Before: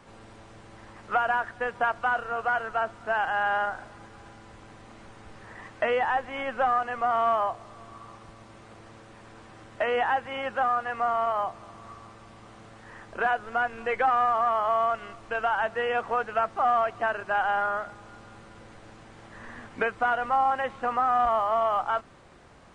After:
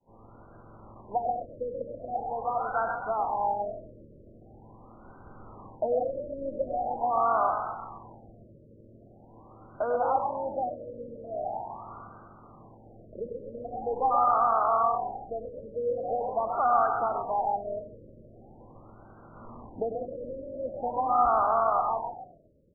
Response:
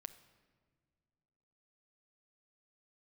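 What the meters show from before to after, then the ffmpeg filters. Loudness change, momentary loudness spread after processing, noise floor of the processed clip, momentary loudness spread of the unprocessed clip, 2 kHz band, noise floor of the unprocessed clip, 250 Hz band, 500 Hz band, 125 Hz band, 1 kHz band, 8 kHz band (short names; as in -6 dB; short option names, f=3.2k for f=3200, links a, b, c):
-2.5 dB, 18 LU, -54 dBFS, 18 LU, -16.5 dB, -50 dBFS, 0.0 dB, -0.5 dB, 0.0 dB, -2.0 dB, n/a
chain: -filter_complex "[0:a]agate=range=-33dB:threshold=-45dB:ratio=3:detection=peak,asplit=7[a][b][c][d][e][f][g];[b]adelay=132,afreqshift=45,volume=-6.5dB[h];[c]adelay=264,afreqshift=90,volume=-12.2dB[i];[d]adelay=396,afreqshift=135,volume=-17.9dB[j];[e]adelay=528,afreqshift=180,volume=-23.5dB[k];[f]adelay=660,afreqshift=225,volume=-29.2dB[l];[g]adelay=792,afreqshift=270,volume=-34.9dB[m];[a][h][i][j][k][l][m]amix=inputs=7:normalize=0,asplit=2[n][o];[1:a]atrim=start_sample=2205,adelay=98[p];[o][p]afir=irnorm=-1:irlink=0,volume=-2.5dB[q];[n][q]amix=inputs=2:normalize=0,afftfilt=real='re*lt(b*sr/1024,600*pow(1600/600,0.5+0.5*sin(2*PI*0.43*pts/sr)))':imag='im*lt(b*sr/1024,600*pow(1600/600,0.5+0.5*sin(2*PI*0.43*pts/sr)))':win_size=1024:overlap=0.75,volume=-1.5dB"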